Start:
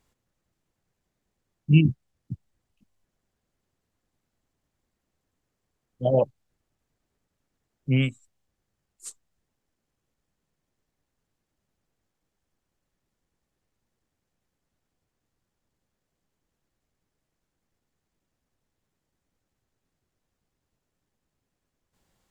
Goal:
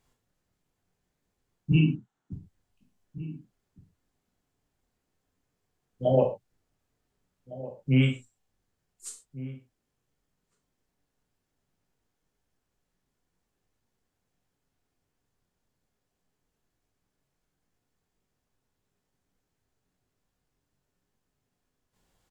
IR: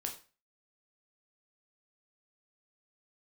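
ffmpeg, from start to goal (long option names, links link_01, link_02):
-filter_complex "[0:a]asettb=1/sr,asplit=3[link_01][link_02][link_03];[link_01]atrim=end=1.724[link_04];[link_02]atrim=start=1.72:end=2.33,asetpts=PTS-STARTPTS,afade=type=in:duration=0.004:curve=qsin,afade=type=out:start_time=0.606:duration=0.004:curve=qsin,highpass=frequency=150:width=0.5412,highpass=frequency=150:width=1.3066,equalizer=frequency=150:width_type=q:width=4:gain=-5,equalizer=frequency=530:width_type=q:width=4:gain=-7,equalizer=frequency=880:width_type=q:width=4:gain=8,equalizer=frequency=1400:width_type=q:width=4:gain=8,equalizer=frequency=2400:width_type=q:width=4:gain=-4,equalizer=frequency=4900:width_type=q:width=4:gain=-10,lowpass=frequency=7800:width=0.5412,lowpass=frequency=7800:width=1.3066[link_05];[link_03]atrim=start=2.326[link_06];[link_04][link_05]acrossfade=duration=0.004:curve1=hsin:curve2=qsin[link_07];[link_07][link_06]acrossfade=duration=0.004:curve1=qsin:curve2=hsin,asplit=2[link_08][link_09];[link_09]adelay=1458,volume=-16dB,highshelf=frequency=4000:gain=-32.8[link_10];[link_08][link_10]amix=inputs=2:normalize=0[link_11];[1:a]atrim=start_sample=2205,atrim=end_sample=6174,asetrate=43218,aresample=44100[link_12];[link_11][link_12]afir=irnorm=-1:irlink=0"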